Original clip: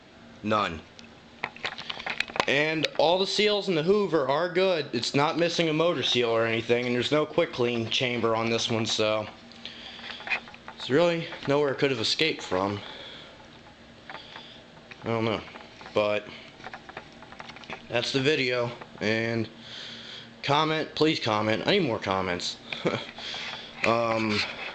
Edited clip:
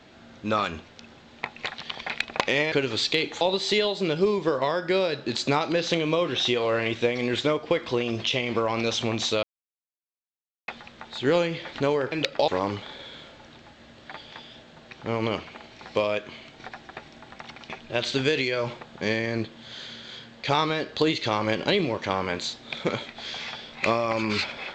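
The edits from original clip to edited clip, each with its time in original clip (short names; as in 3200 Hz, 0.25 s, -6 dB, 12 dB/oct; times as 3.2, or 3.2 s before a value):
2.72–3.08 swap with 11.79–12.48
9.1–10.35 mute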